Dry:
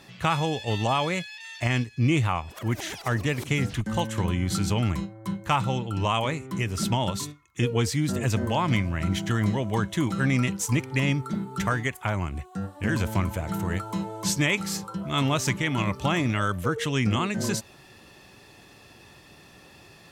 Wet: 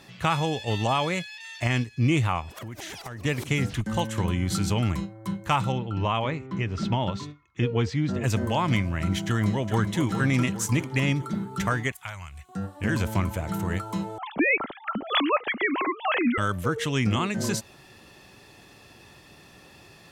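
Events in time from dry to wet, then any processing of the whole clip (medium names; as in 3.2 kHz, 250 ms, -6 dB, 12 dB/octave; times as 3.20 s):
2.54–3.25 s: compression 16:1, threshold -33 dBFS
5.72–8.24 s: distance through air 180 m
9.26–10.05 s: echo throw 410 ms, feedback 50%, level -8.5 dB
11.92–12.49 s: amplifier tone stack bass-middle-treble 10-0-10
14.18–16.38 s: formants replaced by sine waves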